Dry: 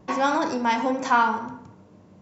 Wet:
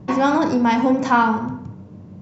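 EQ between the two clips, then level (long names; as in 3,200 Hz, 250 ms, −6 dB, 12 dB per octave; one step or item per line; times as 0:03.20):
low-pass filter 6,900 Hz 12 dB per octave
parametric band 120 Hz +14 dB 2.7 octaves
+1.5 dB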